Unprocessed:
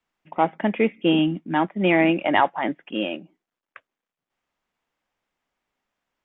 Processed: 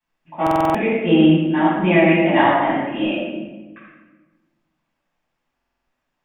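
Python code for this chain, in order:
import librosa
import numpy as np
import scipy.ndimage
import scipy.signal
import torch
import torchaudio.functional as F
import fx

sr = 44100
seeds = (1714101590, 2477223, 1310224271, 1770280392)

y = fx.doubler(x, sr, ms=29.0, db=-4.5, at=(2.54, 3.06))
y = fx.room_shoebox(y, sr, seeds[0], volume_m3=770.0, walls='mixed', distance_m=8.9)
y = fx.buffer_glitch(y, sr, at_s=(0.42, 5.55), block=2048, repeats=6)
y = y * 10.0 ** (-11.0 / 20.0)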